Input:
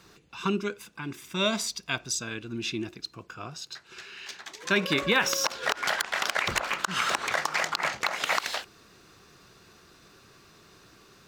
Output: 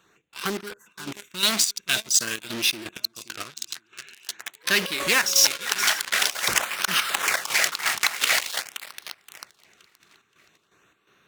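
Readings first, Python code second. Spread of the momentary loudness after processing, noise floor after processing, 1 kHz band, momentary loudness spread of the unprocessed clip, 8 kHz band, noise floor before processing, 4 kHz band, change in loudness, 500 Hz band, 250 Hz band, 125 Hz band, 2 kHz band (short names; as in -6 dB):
18 LU, -67 dBFS, 0.0 dB, 16 LU, +11.0 dB, -57 dBFS, +7.5 dB, +6.0 dB, -2.5 dB, -3.5 dB, -5.0 dB, +4.0 dB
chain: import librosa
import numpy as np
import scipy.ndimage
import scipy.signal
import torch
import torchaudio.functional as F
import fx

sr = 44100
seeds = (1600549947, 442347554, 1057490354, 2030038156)

p1 = fx.wiener(x, sr, points=9)
p2 = p1 + fx.echo_feedback(p1, sr, ms=523, feedback_pct=50, wet_db=-16.5, dry=0)
p3 = fx.spec_box(p2, sr, start_s=0.47, length_s=0.4, low_hz=2000.0, high_hz=4200.0, gain_db=-27)
p4 = fx.fuzz(p3, sr, gain_db=42.0, gate_db=-39.0)
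p5 = p3 + F.gain(torch.from_numpy(p4), -10.0).numpy()
p6 = fx.tilt_eq(p5, sr, slope=3.5)
p7 = fx.filter_lfo_notch(p6, sr, shape='sine', hz=0.47, low_hz=520.0, high_hz=7500.0, q=3.0)
p8 = fx.chopper(p7, sr, hz=2.8, depth_pct=60, duty_pct=60)
p9 = fx.peak_eq(p8, sr, hz=920.0, db=-3.5, octaves=1.7)
p10 = fx.doppler_dist(p9, sr, depth_ms=0.26)
y = F.gain(torch.from_numpy(p10), -1.5).numpy()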